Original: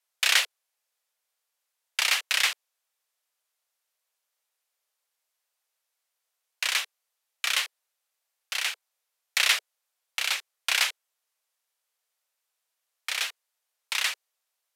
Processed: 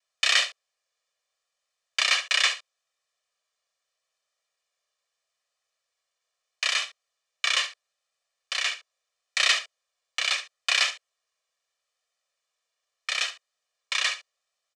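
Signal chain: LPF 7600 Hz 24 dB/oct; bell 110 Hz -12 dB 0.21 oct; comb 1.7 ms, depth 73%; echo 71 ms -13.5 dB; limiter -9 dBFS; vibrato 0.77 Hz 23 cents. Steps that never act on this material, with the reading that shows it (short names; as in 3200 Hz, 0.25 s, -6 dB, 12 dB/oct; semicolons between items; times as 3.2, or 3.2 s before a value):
bell 110 Hz: input band starts at 380 Hz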